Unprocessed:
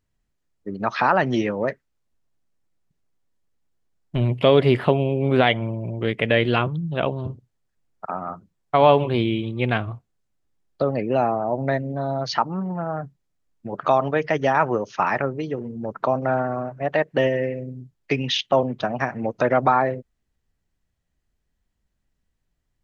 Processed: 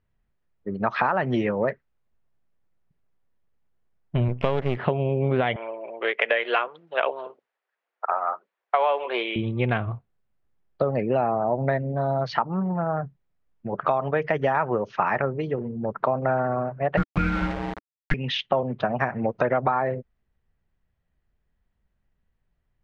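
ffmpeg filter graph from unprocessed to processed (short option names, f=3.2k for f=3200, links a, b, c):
-filter_complex "[0:a]asettb=1/sr,asplit=3[a][b][c];[a]atrim=end=4.284[d];[b]atrim=start=4.28:end=4.77,asetpts=PTS-STARTPTS,afade=t=in:d=0.004:c=qsin,afade=t=out:st=0.486:d=0.004:c=qsin,aeval=exprs='if(lt(val(0),0),0.251*val(0),val(0))':c=same,adynamicsmooth=sensitivity=8:basefreq=1.1k[e];[c]atrim=start=4.766[f];[d][e]acrossfade=d=0.004:c1=hsin:c2=qsin[g];[g][f]acrossfade=d=0.004:c1=qsin:c2=hsin,asettb=1/sr,asplit=3[h][i][j];[h]atrim=end=5.564[k];[i]atrim=start=5.56:end=9.36,asetpts=PTS-STARTPTS,afade=t=in:d=0.004:c=qsin,afade=t=out:st=3.796:d=0.004:c=qsin,highpass=f=440:w=0.5412,highpass=f=440:w=1.3066,equalizer=f=1.8k:t=o:w=2.2:g=6,aphaser=in_gain=1:out_gain=1:delay=4.5:decay=0.22:speed=1.3:type=triangular[l];[j]atrim=start=9.356[m];[k][l]acrossfade=d=0.004:c1=hsin:c2=qsin[n];[n][m]acrossfade=d=0.004:c1=qsin:c2=hsin,asettb=1/sr,asplit=3[o][p][q];[o]atrim=end=16.974[r];[p]atrim=start=16.97:end=18.14,asetpts=PTS-STARTPTS,afade=t=in:d=0.004:c=qsin,afade=t=out:st=1.166:d=0.004:c=qsin,afreqshift=-440,aecho=1:1:6.5:0.97,atrim=end_sample=51597,aeval=exprs='val(0)*gte(abs(val(0)),0.0562)':c=same[s];[q]atrim=start=18.136[t];[r][s]acrossfade=d=0.004:c1=hsin:c2=qsin[u];[u][t]acrossfade=d=0.004:c1=qsin:c2=hsin,lowpass=2.5k,equalizer=f=290:w=4.2:g=-6.5,acompressor=threshold=-20dB:ratio=10,volume=2dB"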